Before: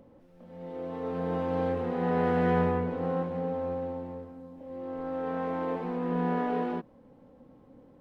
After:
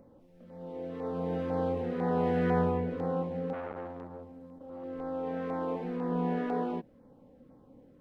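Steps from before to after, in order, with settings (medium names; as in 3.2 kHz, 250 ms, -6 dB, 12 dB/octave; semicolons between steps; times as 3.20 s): LFO notch saw down 2 Hz 720–3300 Hz; 3.53–4.84 s: transformer saturation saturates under 950 Hz; trim -1.5 dB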